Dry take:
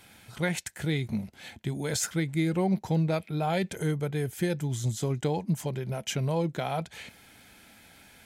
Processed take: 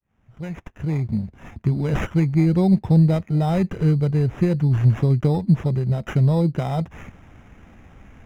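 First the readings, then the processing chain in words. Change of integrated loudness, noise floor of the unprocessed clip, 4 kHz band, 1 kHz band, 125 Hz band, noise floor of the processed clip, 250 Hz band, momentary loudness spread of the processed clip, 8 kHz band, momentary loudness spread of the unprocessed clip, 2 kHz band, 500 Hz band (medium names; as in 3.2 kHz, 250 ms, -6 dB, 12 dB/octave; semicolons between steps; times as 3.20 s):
+9.5 dB, -56 dBFS, no reading, +2.5 dB, +12.0 dB, -60 dBFS, +10.0 dB, 12 LU, under -10 dB, 8 LU, -0.5 dB, +4.5 dB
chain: fade-in on the opening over 1.68 s; sample-and-hold 10×; RIAA curve playback; trim +2 dB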